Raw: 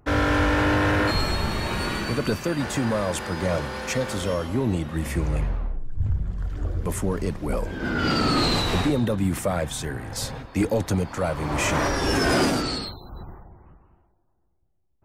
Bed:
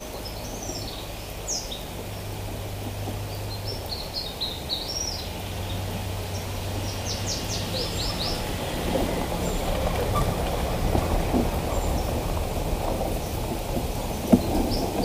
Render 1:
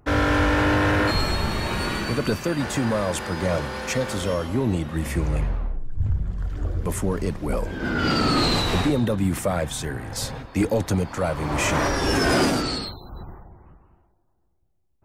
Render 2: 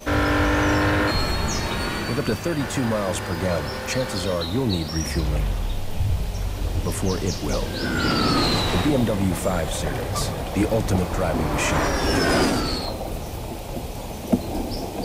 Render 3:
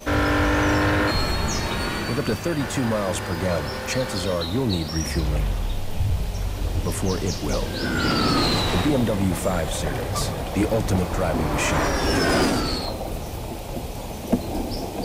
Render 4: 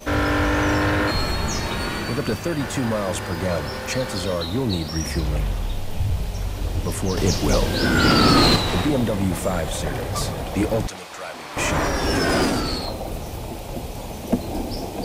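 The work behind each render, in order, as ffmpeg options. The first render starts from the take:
-af "volume=1dB"
-filter_complex "[1:a]volume=-3dB[a];[0:a][a]amix=inputs=2:normalize=0"
-af "aeval=exprs='clip(val(0),-1,0.178)':c=same"
-filter_complex "[0:a]asettb=1/sr,asplit=3[a][b][c];[a]atrim=end=10.874[d];[b]atrim=start=10.87:end=11.57,asetpts=PTS-STARTPTS,afade=t=in:d=0.004:c=qsin,afade=t=out:st=0.696:d=0.004:c=qsin,bandpass=f=3.9k:t=q:w=0.5[e];[c]atrim=start=11.566[f];[d][e]acrossfade=d=0.004:c1=hsin:c2=qsin[g];[g][f]acrossfade=d=0.004:c1=qsin:c2=hsin,asplit=3[h][i][j];[h]atrim=end=7.172[k];[i]atrim=start=7.168:end=8.562,asetpts=PTS-STARTPTS,volume=5.5dB[l];[j]atrim=start=8.558[m];[k][l]acrossfade=d=0.004:c1=hsin:c2=hsin[n];[n][m]acrossfade=d=0.004:c1=hsin:c2=hsin"

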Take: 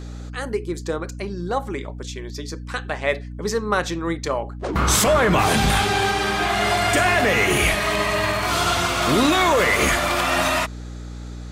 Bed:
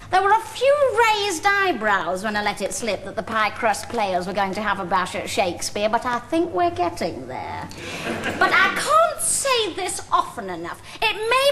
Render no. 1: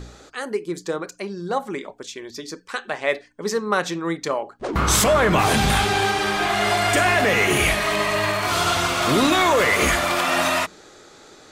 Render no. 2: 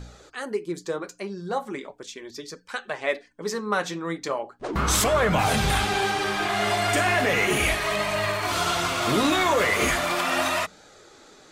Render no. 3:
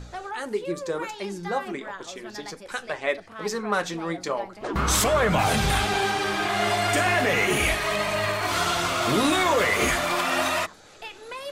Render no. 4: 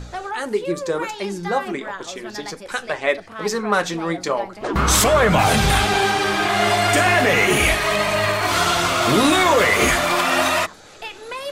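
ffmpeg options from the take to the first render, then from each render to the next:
-af "bandreject=f=60:t=h:w=4,bandreject=f=120:t=h:w=4,bandreject=f=180:t=h:w=4,bandreject=f=240:t=h:w=4,bandreject=f=300:t=h:w=4"
-af "flanger=delay=1.3:depth=9:regen=-43:speed=0.37:shape=sinusoidal"
-filter_complex "[1:a]volume=-18.5dB[a];[0:a][a]amix=inputs=2:normalize=0"
-af "volume=6dB"

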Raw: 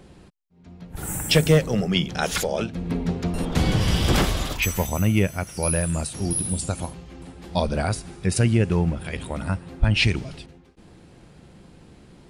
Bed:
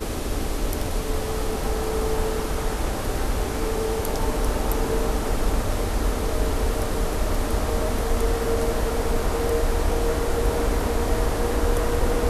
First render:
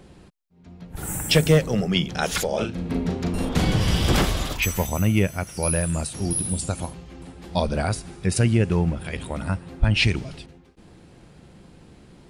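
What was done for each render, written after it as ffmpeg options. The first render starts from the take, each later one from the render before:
-filter_complex "[0:a]asettb=1/sr,asplit=3[a][b][c];[a]atrim=end=2.494[d];[b]atrim=start=2.49:end=3.65,asetpts=PTS-STARTPTS,afade=t=in:d=0.004:c=qsin,afade=t=out:st=1.156:d=0.004:c=qsin,asplit=2[e][f];[f]adelay=38,volume=-5dB[g];[e][g]amix=inputs=2:normalize=0,atrim=end_sample=51156[h];[c]atrim=start=3.646[i];[d][h]acrossfade=d=0.004:c1=hsin:c2=qsin[j];[j][i]acrossfade=d=0.004:c1=qsin:c2=hsin"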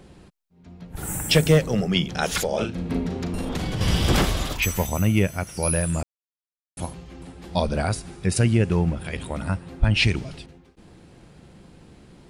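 -filter_complex "[0:a]asettb=1/sr,asplit=3[a][b][c];[a]atrim=end=3.064[d];[b]atrim=start=3.06:end=3.81,asetpts=PTS-STARTPTS,afade=t=in:d=0.004:c=qsin,afade=t=out:st=0.746:d=0.004:c=qsin,acompressor=threshold=-23dB:ratio=6:attack=3.2:release=140:knee=1:detection=peak[e];[c]atrim=start=3.806[f];[d][e]acrossfade=d=0.004:c1=hsin:c2=qsin[g];[g][f]acrossfade=d=0.004:c1=qsin:c2=hsin,asplit=3[h][i][j];[h]atrim=end=6.03,asetpts=PTS-STARTPTS,afade=t=out:st=6.026:d=0.004:c=hsin[k];[i]atrim=start=6.03:end=6.77,asetpts=PTS-STARTPTS,volume=0[l];[j]atrim=start=6.77,asetpts=PTS-STARTPTS,afade=t=in:d=0.004:c=hsin[m];[k][l][m]concat=n=3:v=0:a=1"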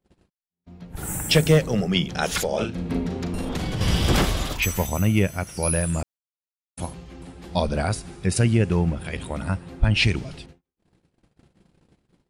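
-af "agate=range=-34dB:threshold=-45dB:ratio=16:detection=peak"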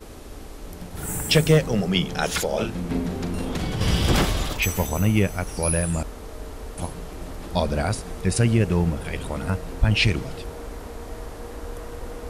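-filter_complex "[1:a]volume=-13dB[a];[0:a][a]amix=inputs=2:normalize=0"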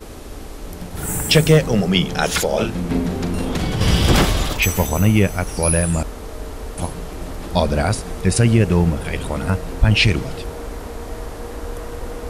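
-af "volume=5.5dB,alimiter=limit=-3dB:level=0:latency=1"

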